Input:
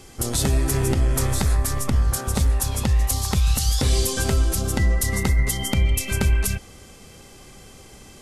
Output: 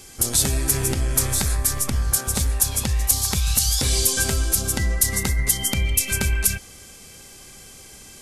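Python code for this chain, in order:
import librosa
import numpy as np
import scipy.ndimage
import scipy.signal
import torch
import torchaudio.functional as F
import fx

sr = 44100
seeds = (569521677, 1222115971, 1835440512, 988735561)

y = fx.high_shelf(x, sr, hz=3500.0, db=12.0)
y = fx.small_body(y, sr, hz=(1600.0, 2300.0), ring_ms=45, db=8)
y = F.gain(torch.from_numpy(y), -3.5).numpy()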